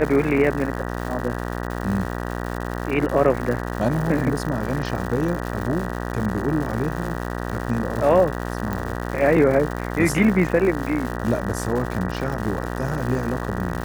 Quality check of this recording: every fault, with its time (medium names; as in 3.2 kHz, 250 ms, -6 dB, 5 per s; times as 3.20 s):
buzz 60 Hz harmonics 32 -28 dBFS
crackle 240 per s -28 dBFS
8.73 s: pop